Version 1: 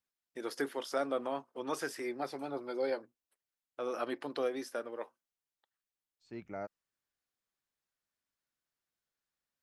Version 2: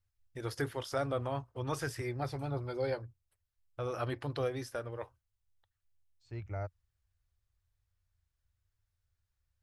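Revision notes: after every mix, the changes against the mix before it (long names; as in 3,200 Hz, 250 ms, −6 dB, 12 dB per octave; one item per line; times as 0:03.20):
first voice: remove high-pass filter 290 Hz 12 dB per octave
master: add low shelf with overshoot 140 Hz +14 dB, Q 3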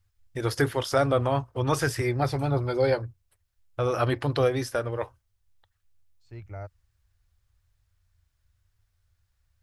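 first voice +11.0 dB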